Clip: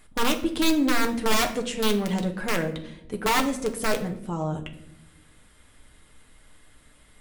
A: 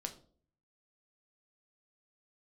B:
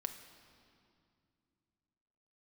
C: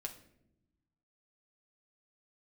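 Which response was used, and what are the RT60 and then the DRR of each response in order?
C; 0.50 s, 2.4 s, non-exponential decay; 4.5, 6.5, 3.5 decibels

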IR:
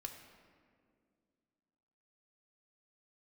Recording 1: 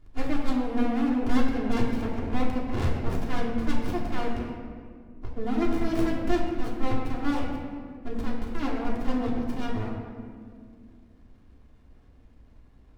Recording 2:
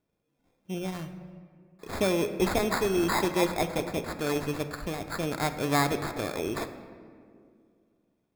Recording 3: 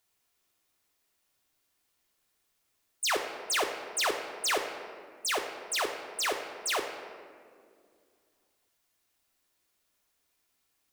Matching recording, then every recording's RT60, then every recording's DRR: 3; 2.1, 2.2, 2.2 seconds; −5.0, 7.0, 3.0 decibels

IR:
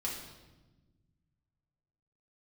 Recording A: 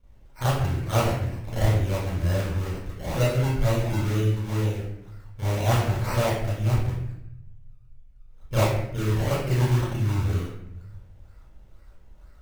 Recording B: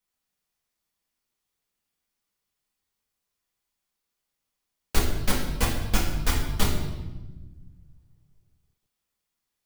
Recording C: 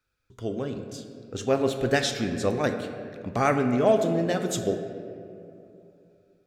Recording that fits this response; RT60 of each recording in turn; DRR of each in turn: B; 0.75, 1.2, 2.7 seconds; −11.0, −4.5, 6.0 decibels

